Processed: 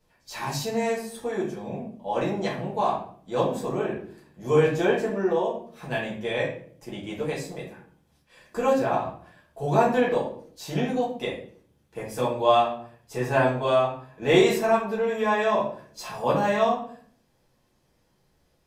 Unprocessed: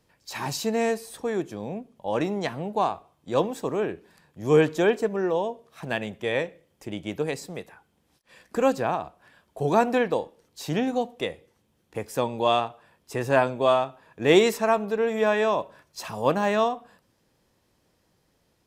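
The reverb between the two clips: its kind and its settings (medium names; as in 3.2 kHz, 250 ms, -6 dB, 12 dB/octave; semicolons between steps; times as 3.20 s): simulated room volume 57 m³, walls mixed, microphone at 1.5 m; trim -8 dB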